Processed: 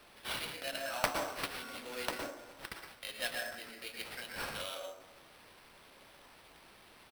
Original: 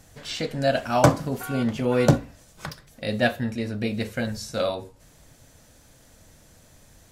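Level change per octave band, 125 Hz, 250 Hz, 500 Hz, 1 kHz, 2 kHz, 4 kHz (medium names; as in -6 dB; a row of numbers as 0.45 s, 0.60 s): -30.0 dB, -25.0 dB, -18.0 dB, -12.5 dB, -8.0 dB, -6.0 dB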